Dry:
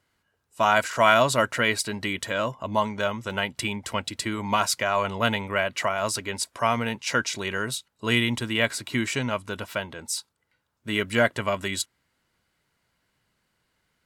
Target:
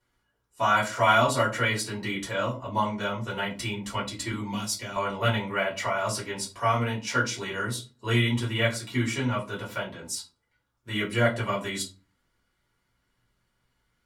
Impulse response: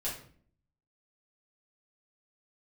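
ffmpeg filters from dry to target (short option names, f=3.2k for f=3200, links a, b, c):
-filter_complex "[0:a]asettb=1/sr,asplit=3[a][b][c];[a]atrim=end=4.314[d];[b]atrim=start=4.31:end=4.96,asetpts=PTS-STARTPTS,afade=t=in:d=0.004:c=qsin,afade=t=out:st=0.646:d=0.004:c=qsin,acrossover=split=350|3000[e][f][g];[f]acompressor=threshold=-38dB:ratio=6[h];[e][h][g]amix=inputs=3:normalize=0[i];[c]atrim=start=4.956[j];[d][i]acrossfade=d=0.004:c1=hsin:c2=qsin[k];[k][j]acrossfade=d=0.004:c1=qsin:c2=hsin[l];[1:a]atrim=start_sample=2205,asetrate=88200,aresample=44100[m];[l][m]afir=irnorm=-1:irlink=0"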